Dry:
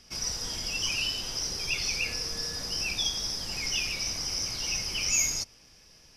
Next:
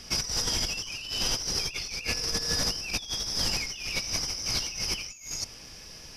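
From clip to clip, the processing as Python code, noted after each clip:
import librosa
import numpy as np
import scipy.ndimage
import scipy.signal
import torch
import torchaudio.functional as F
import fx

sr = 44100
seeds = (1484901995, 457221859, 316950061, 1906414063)

y = fx.over_compress(x, sr, threshold_db=-36.0, ratio=-0.5)
y = y * librosa.db_to_amplitude(5.5)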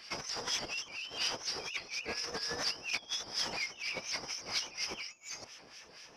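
y = fx.filter_lfo_bandpass(x, sr, shape='sine', hz=4.2, low_hz=570.0, high_hz=2700.0, q=0.85)
y = fx.vibrato_shape(y, sr, shape='saw_up', rate_hz=3.4, depth_cents=100.0)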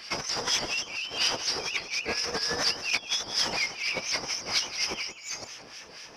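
y = x + 10.0 ** (-13.0 / 20.0) * np.pad(x, (int(179 * sr / 1000.0), 0))[:len(x)]
y = y * librosa.db_to_amplitude(8.0)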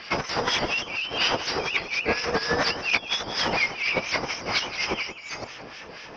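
y = fx.air_absorb(x, sr, metres=250.0)
y = y * librosa.db_to_amplitude(9.0)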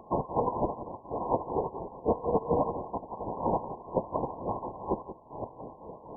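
y = fx.brickwall_lowpass(x, sr, high_hz=1100.0)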